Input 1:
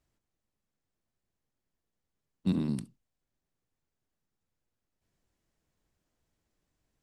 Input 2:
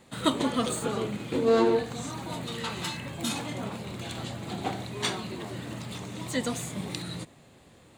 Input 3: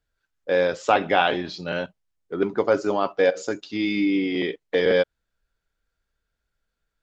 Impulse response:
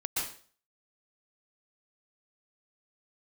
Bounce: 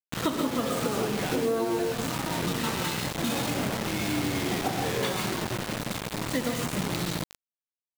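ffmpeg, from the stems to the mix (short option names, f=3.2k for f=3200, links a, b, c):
-filter_complex "[0:a]volume=-4dB,asplit=2[a][b];[1:a]lowpass=f=2.2k:p=1,volume=1.5dB,asplit=3[c][d][e];[d]volume=-6dB[f];[e]volume=-10.5dB[g];[2:a]alimiter=limit=-16dB:level=0:latency=1,adelay=100,volume=-8.5dB,asplit=2[h][i];[i]volume=-13.5dB[j];[b]apad=whole_len=314011[k];[h][k]sidechaincompress=threshold=-48dB:ratio=8:attack=16:release=1080[l];[3:a]atrim=start_sample=2205[m];[f][j]amix=inputs=2:normalize=0[n];[n][m]afir=irnorm=-1:irlink=0[o];[g]aecho=0:1:68|136|204|272|340|408:1|0.41|0.168|0.0689|0.0283|0.0116[p];[a][c][l][o][p]amix=inputs=5:normalize=0,acrusher=bits=4:mix=0:aa=0.000001,acompressor=threshold=-24dB:ratio=6"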